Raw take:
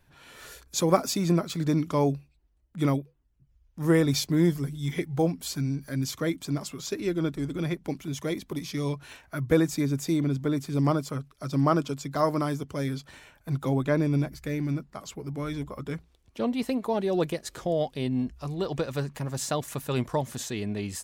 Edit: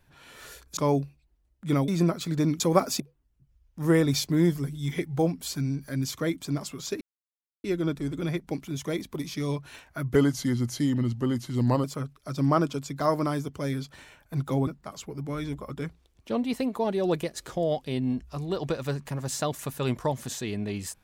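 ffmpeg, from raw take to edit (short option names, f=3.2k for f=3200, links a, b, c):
-filter_complex "[0:a]asplit=9[a][b][c][d][e][f][g][h][i];[a]atrim=end=0.772[j];[b]atrim=start=1.888:end=3.002[k];[c]atrim=start=1.168:end=1.892[l];[d]atrim=start=0.768:end=1.172[m];[e]atrim=start=2.998:end=7.01,asetpts=PTS-STARTPTS,afade=t=out:st=4.008:d=0.004:c=hsin,apad=pad_dur=0.63[n];[f]atrim=start=7.01:end=9.524,asetpts=PTS-STARTPTS,afade=t=in:d=0.004:c=hsin[o];[g]atrim=start=9.52:end=10.99,asetpts=PTS-STARTPTS,asetrate=38367,aresample=44100[p];[h]atrim=start=10.986:end=13.822[q];[i]atrim=start=14.758[r];[j][k]acrossfade=d=0.004:c1=hsin:c2=hsin[s];[s][l]acrossfade=d=0.004:c1=hsin:c2=hsin[t];[t][m]acrossfade=d=0.004:c1=hsin:c2=hsin[u];[n][o]concat=n=2:v=0:a=1[v];[u][v]acrossfade=d=0.004:c1=hsin:c2=hsin[w];[w][p]acrossfade=d=0.004:c1=hsin:c2=hsin[x];[x][q]acrossfade=d=0.004:c1=hsin:c2=hsin[y];[y][r]acrossfade=d=0.004:c1=hsin:c2=hsin"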